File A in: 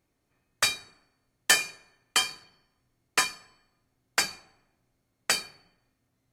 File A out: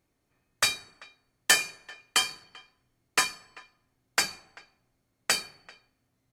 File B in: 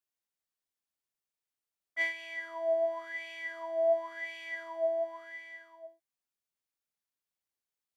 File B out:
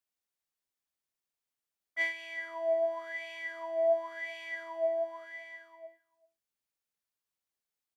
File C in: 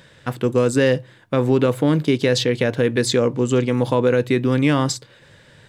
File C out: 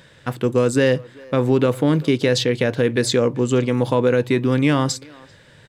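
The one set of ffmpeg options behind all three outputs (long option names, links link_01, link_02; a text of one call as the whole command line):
ffmpeg -i in.wav -filter_complex "[0:a]asplit=2[link_01][link_02];[link_02]adelay=390,highpass=300,lowpass=3400,asoftclip=type=hard:threshold=-13.5dB,volume=-22dB[link_03];[link_01][link_03]amix=inputs=2:normalize=0" out.wav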